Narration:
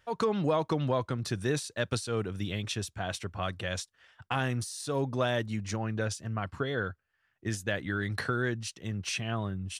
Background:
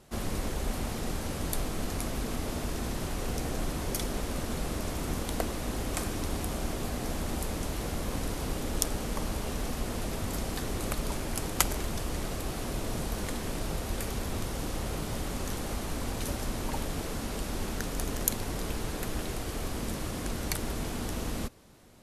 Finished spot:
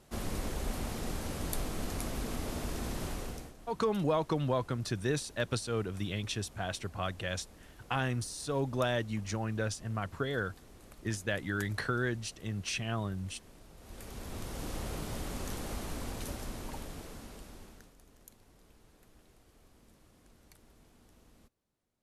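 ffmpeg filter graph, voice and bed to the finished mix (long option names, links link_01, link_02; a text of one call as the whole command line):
ffmpeg -i stem1.wav -i stem2.wav -filter_complex "[0:a]adelay=3600,volume=-2dB[link_01];[1:a]volume=14dB,afade=type=out:start_time=3.09:duration=0.45:silence=0.11885,afade=type=in:start_time=13.76:duration=0.97:silence=0.133352,afade=type=out:start_time=15.82:duration=2.14:silence=0.0668344[link_02];[link_01][link_02]amix=inputs=2:normalize=0" out.wav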